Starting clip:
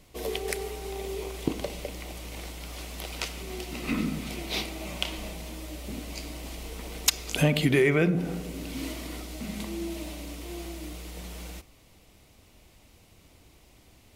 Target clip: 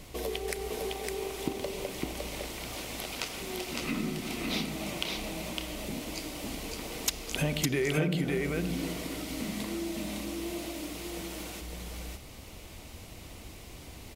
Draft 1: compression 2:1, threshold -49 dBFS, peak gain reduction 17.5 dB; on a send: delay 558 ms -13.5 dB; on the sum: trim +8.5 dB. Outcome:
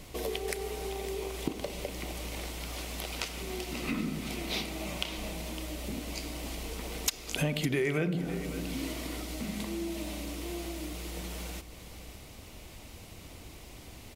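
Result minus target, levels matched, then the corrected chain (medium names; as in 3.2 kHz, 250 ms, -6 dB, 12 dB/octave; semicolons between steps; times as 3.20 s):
echo-to-direct -10.5 dB
compression 2:1, threshold -49 dBFS, peak gain reduction 17.5 dB; on a send: delay 558 ms -3 dB; on the sum: trim +8.5 dB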